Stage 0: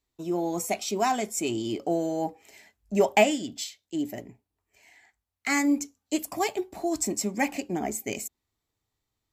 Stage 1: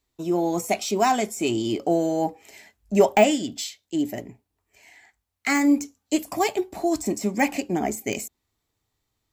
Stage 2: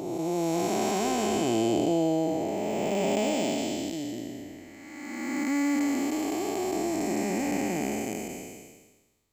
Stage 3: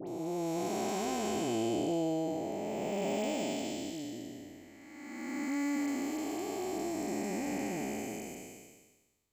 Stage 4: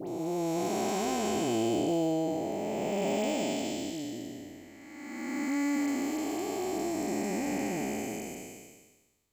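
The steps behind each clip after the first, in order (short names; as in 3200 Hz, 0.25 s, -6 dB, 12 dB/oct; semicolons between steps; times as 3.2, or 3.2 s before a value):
de-esser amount 65%; gain +5 dB
time blur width 0.814 s; gain +3 dB
dispersion highs, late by 73 ms, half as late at 1600 Hz; gain -7 dB
block floating point 7-bit; gain +3.5 dB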